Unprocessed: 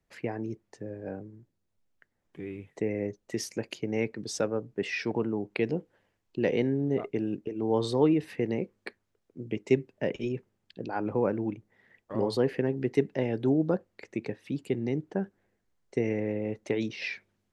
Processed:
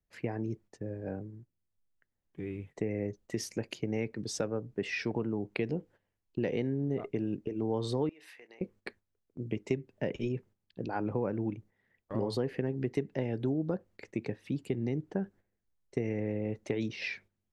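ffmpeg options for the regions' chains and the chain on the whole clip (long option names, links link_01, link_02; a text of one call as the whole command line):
ffmpeg -i in.wav -filter_complex "[0:a]asettb=1/sr,asplit=3[link_01][link_02][link_03];[link_01]atrim=end=8.094[link_04];[link_02]atrim=start=8.09:end=8.61,asetpts=PTS-STARTPTS,afade=type=in:duration=0.004:curve=qsin,afade=type=out:start_time=0.516:duration=0.004:curve=qsin,highpass=950,acompressor=threshold=-47dB:ratio=20:attack=3.2:release=140:knee=1:detection=peak,asplit=2[link_05][link_06];[link_06]adelay=29,volume=-11.5dB[link_07];[link_05][link_07]amix=inputs=2:normalize=0,atrim=end_sample=22932[link_08];[link_03]atrim=start=8.606[link_09];[link_04][link_08]acrossfade=duration=0.004:curve1=hsin:curve2=qsin[link_10];[link_10][link_09]acrossfade=duration=0.004:curve1=qsin:curve2=hsin,agate=range=-10dB:threshold=-52dB:ratio=16:detection=peak,lowshelf=frequency=130:gain=9.5,acompressor=threshold=-26dB:ratio=4,volume=-2dB" out.wav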